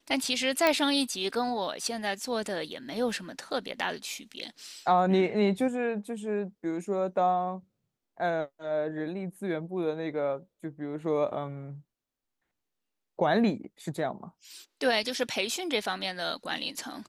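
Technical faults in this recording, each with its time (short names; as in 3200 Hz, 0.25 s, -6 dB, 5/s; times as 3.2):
0.67 pop -10 dBFS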